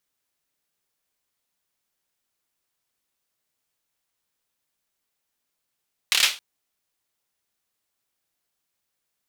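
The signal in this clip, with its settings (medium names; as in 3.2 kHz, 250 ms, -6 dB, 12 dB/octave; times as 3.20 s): hand clap length 0.27 s, bursts 5, apart 27 ms, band 3.1 kHz, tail 0.30 s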